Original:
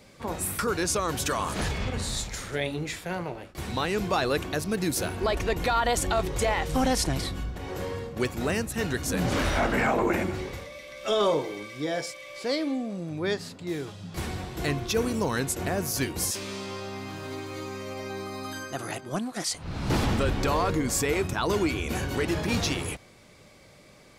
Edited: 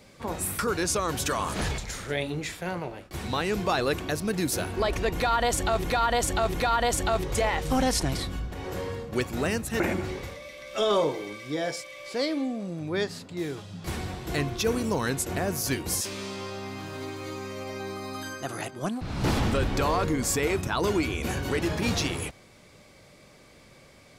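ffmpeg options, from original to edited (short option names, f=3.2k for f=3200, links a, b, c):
-filter_complex "[0:a]asplit=6[a][b][c][d][e][f];[a]atrim=end=1.782[g];[b]atrim=start=2.218:end=6.282[h];[c]atrim=start=5.578:end=6.282[i];[d]atrim=start=5.578:end=8.842[j];[e]atrim=start=10.098:end=19.312[k];[f]atrim=start=19.668[l];[g][h]acrossfade=d=0.004:c1=hsin:c2=hsin[m];[m][i]acrossfade=d=0.004:c1=hsin:c2=hsin[n];[n][j]acrossfade=d=0.004:c1=hsin:c2=hsin[o];[o][k]acrossfade=d=0.004:c1=hsin:c2=hsin[p];[p][l]acrossfade=d=0.004:c1=hsin:c2=hsin"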